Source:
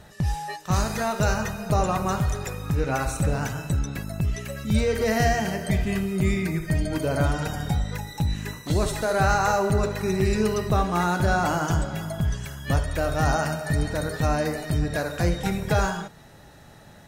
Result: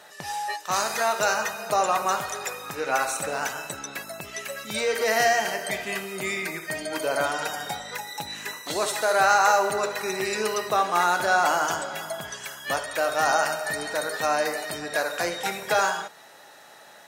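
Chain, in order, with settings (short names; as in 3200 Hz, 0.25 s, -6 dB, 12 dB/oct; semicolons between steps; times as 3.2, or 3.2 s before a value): HPF 600 Hz 12 dB/oct; gain +4.5 dB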